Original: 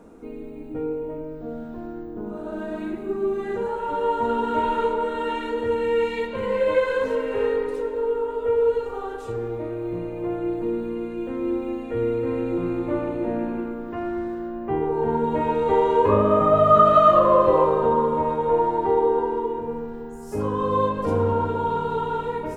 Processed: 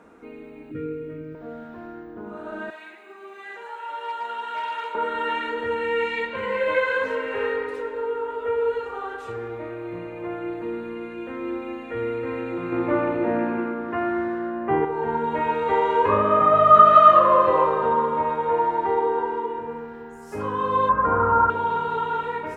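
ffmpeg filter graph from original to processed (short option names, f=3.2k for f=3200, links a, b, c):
-filter_complex "[0:a]asettb=1/sr,asplit=3[a][b][c];[a]atrim=end=0.714[d];[b]atrim=start=0.71:end=1.35,asetpts=PTS-STARTPTS,afade=t=in:d=0.004:c=qsin,afade=t=out:st=0.636:d=0.004:c=qsin,asuperstop=centerf=810:order=4:qfactor=0.98,equalizer=f=130:t=o:w=1.6:g=10[e];[c]atrim=start=1.346[f];[d][e]acrossfade=d=0.004:c1=hsin:c2=qsin[g];[g][f]acrossfade=d=0.004:c1=qsin:c2=hsin,asettb=1/sr,asplit=3[h][i][j];[h]atrim=end=2.704[k];[i]atrim=start=2.7:end=4.95,asetpts=PTS-STARTPTS,afade=t=in:d=0.004:c=qsin,afade=t=out:st=2.246:d=0.004:c=qsin,highpass=930,equalizer=f=1.3k:w=1.5:g=-7,asoftclip=type=hard:threshold=-25dB[l];[j]atrim=start=4.946[m];[k][l]acrossfade=d=0.004:c1=hsin:c2=qsin[n];[n][m]acrossfade=d=0.004:c1=qsin:c2=hsin,asettb=1/sr,asplit=3[o][p][q];[o]atrim=end=12.724[r];[p]atrim=start=12.72:end=14.85,asetpts=PTS-STARTPTS,afade=t=in:d=0.004:c=qsin,afade=t=out:st=2.126:d=0.004:c=qsin,highpass=79,highshelf=f=2.1k:g=-8.5,acontrast=85[s];[q]atrim=start=14.846[t];[r][s]acrossfade=d=0.004:c1=hsin:c2=qsin[u];[u][t]acrossfade=d=0.004:c1=qsin:c2=hsin,asettb=1/sr,asplit=3[v][w][x];[v]atrim=end=20.894[y];[w]atrim=start=20.89:end=21.5,asetpts=PTS-STARTPTS,afade=t=in:d=0.004:c=qsin,afade=t=out:st=0.606:d=0.004:c=qsin,aeval=exprs='val(0)+0.0282*(sin(2*PI*60*n/s)+sin(2*PI*2*60*n/s)/2+sin(2*PI*3*60*n/s)/3+sin(2*PI*4*60*n/s)/4+sin(2*PI*5*60*n/s)/5)':c=same,lowpass=f=1.3k:t=q:w=4.8[z];[x]atrim=start=21.496[aa];[y][z]acrossfade=d=0.004:c1=hsin:c2=qsin[ab];[ab][aa]acrossfade=d=0.004:c1=qsin:c2=hsin,highpass=50,equalizer=f=1.8k:w=0.59:g=13.5,volume=-6.5dB"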